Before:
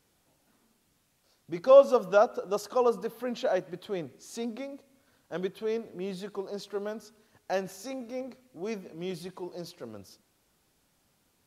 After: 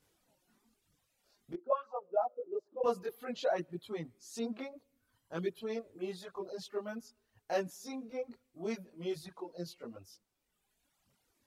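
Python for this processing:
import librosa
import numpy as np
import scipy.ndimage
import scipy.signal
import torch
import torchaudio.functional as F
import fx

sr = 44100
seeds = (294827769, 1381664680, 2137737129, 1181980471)

y = fx.auto_wah(x, sr, base_hz=290.0, top_hz=1500.0, q=5.0, full_db=-12.5, direction='up', at=(1.53, 2.84))
y = fx.chorus_voices(y, sr, voices=2, hz=0.54, base_ms=20, depth_ms=2.8, mix_pct=55)
y = fx.dereverb_blind(y, sr, rt60_s=1.7)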